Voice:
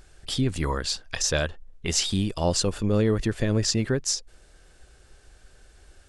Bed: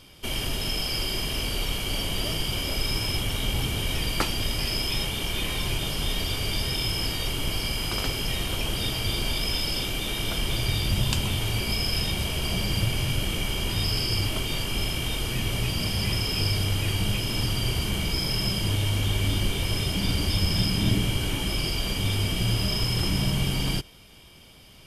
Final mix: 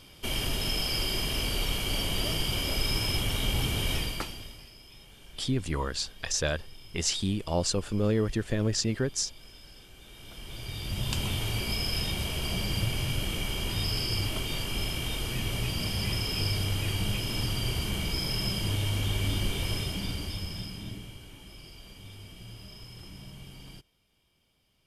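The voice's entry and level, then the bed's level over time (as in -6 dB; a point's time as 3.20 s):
5.10 s, -4.0 dB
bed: 3.95 s -1.5 dB
4.73 s -24.5 dB
9.93 s -24.5 dB
11.22 s -4 dB
19.70 s -4 dB
21.27 s -21 dB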